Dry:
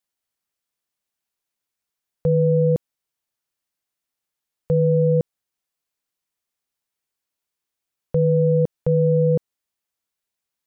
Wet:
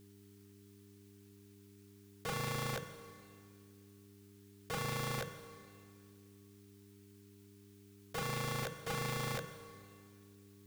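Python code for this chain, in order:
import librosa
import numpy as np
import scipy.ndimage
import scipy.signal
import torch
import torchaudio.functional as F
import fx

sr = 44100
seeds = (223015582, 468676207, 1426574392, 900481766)

y = fx.peak_eq(x, sr, hz=570.0, db=-8.5, octaves=0.96)
y = fx.notch(y, sr, hz=510.0, q=12.0)
y = fx.over_compress(y, sr, threshold_db=-34.0, ratio=-1.0)
y = fx.room_early_taps(y, sr, ms=(43, 71), db=(-16.0, -15.5))
y = (np.mod(10.0 ** (34.0 / 20.0) * y + 1.0, 2.0) - 1.0) / 10.0 ** (34.0 / 20.0)
y = fx.rev_plate(y, sr, seeds[0], rt60_s=2.2, hf_ratio=1.0, predelay_ms=0, drr_db=10.5)
y = fx.dmg_buzz(y, sr, base_hz=100.0, harmonics=4, level_db=-60.0, tilt_db=-2, odd_only=False)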